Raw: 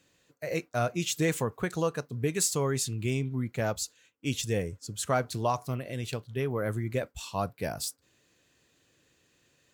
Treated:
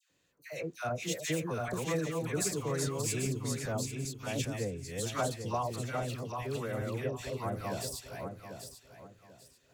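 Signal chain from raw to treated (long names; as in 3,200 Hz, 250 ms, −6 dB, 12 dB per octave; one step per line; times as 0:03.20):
feedback delay that plays each chunk backwards 395 ms, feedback 52%, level −2 dB
all-pass dispersion lows, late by 104 ms, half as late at 1,200 Hz
level −6.5 dB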